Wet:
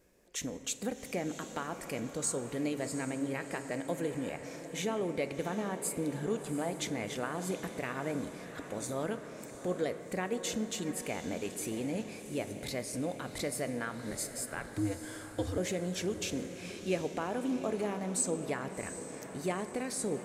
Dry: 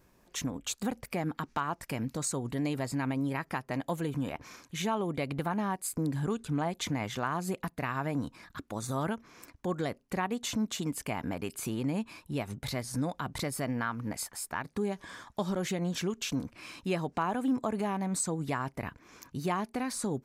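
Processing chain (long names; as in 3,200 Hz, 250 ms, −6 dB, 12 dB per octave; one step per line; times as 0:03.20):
graphic EQ with 10 bands 125 Hz −4 dB, 500 Hz +9 dB, 1,000 Hz −7 dB, 2,000 Hz +4 dB, 8,000 Hz +6 dB
convolution reverb RT60 3.0 s, pre-delay 8 ms, DRR 10 dB
0:14.11–0:15.58: frequency shifter −99 Hz
feedback delay with all-pass diffusion 733 ms, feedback 55%, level −11 dB
level −5 dB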